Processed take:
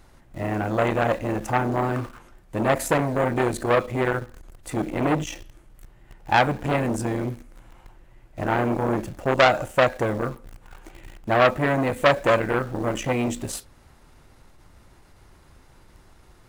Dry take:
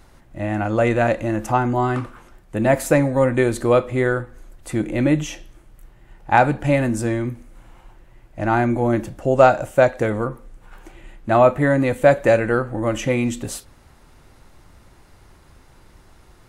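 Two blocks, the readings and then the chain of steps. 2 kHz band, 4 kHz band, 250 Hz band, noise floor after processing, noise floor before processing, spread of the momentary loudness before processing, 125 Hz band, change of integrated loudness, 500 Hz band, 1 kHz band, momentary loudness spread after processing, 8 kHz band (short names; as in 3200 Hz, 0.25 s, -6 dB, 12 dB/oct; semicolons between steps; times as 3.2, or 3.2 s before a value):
-1.5 dB, +4.0 dB, -5.0 dB, -53 dBFS, -51 dBFS, 13 LU, -5.0 dB, -4.0 dB, -5.0 dB, -2.5 dB, 14 LU, -2.0 dB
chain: in parallel at -9 dB: requantised 6-bit, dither none; on the sum: core saturation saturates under 1900 Hz; gain -2.5 dB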